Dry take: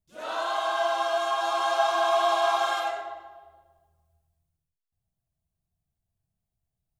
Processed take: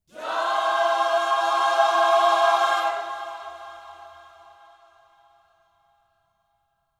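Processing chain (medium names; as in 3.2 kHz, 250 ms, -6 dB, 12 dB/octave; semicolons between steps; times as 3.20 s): dynamic bell 1.2 kHz, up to +4 dB, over -37 dBFS, Q 0.95; echo that smears into a reverb 465 ms, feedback 51%, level -14.5 dB; trim +2 dB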